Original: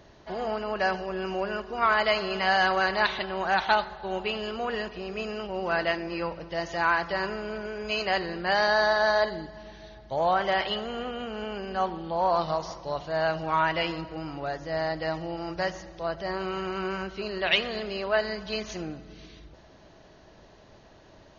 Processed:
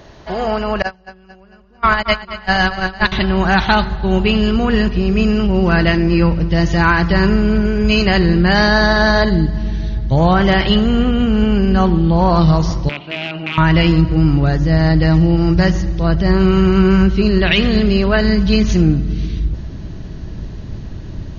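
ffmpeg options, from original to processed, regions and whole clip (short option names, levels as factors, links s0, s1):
-filter_complex "[0:a]asettb=1/sr,asplit=3[s0][s1][s2];[s0]atrim=end=0.824[s3];[s1]atrim=start=0.82:end=3.12,asetpts=PTS-STARTPTS,afade=t=in:d=0.004:c=qsin,afade=t=out:st=2.296:d=0.004:c=qsin,agate=range=0.0316:threshold=0.0708:ratio=16:release=100:detection=peak,aecho=1:1:223|446|669|892:0.224|0.0985|0.0433|0.0191,atrim=end_sample=101430[s4];[s2]atrim=start=3.116[s5];[s3][s4]acrossfade=d=0.004:c1=hsin:c2=qsin[s6];[s6][s5]acrossfade=d=0.004:c1=qsin:c2=hsin,asettb=1/sr,asplit=3[s7][s8][s9];[s7]atrim=end=12.894[s10];[s8]atrim=start=12.89:end=13.58,asetpts=PTS-STARTPTS,afade=t=in:d=0.004:c=qsin,afade=t=out:st=0.686:d=0.004:c=qsin,acompressor=threshold=0.0501:ratio=10:attack=3.2:release=140:knee=1:detection=peak,aeval=exprs='(mod(15.8*val(0)+1,2)-1)/15.8':c=same,highpass=470,equalizer=f=510:t=q:w=4:g=-9,equalizer=f=760:t=q:w=4:g=-5,equalizer=f=1100:t=q:w=4:g=-7,equalizer=f=1700:t=q:w=4:g=-9,equalizer=f=2500:t=q:w=4:g=8,lowpass=f=3100:w=0.5412,lowpass=f=3100:w=1.3066[s11];[s9]atrim=start=13.576[s12];[s10][s11]acrossfade=d=0.004:c1=hsin:c2=qsin[s13];[s13][s12]acrossfade=d=0.004:c1=qsin:c2=hsin,asubboost=boost=11.5:cutoff=190,alimiter=level_in=4.73:limit=0.891:release=50:level=0:latency=1,volume=0.891"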